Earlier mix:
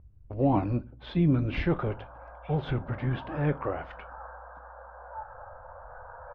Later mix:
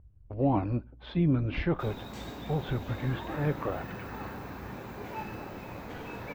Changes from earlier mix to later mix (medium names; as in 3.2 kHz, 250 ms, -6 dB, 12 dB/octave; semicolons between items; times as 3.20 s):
speech: send -7.5 dB; background: remove Chebyshev band-pass 510–1600 Hz, order 5